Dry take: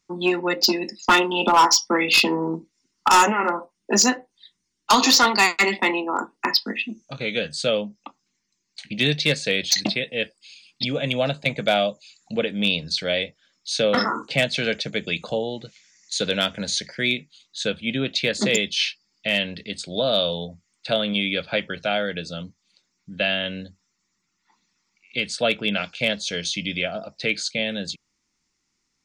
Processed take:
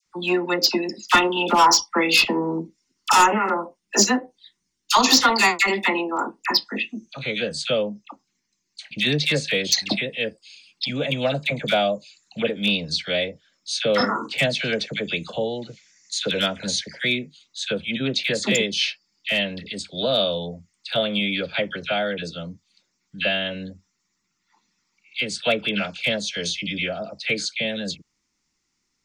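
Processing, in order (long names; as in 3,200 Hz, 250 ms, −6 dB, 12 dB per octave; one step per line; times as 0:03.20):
all-pass dispersion lows, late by 61 ms, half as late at 1,300 Hz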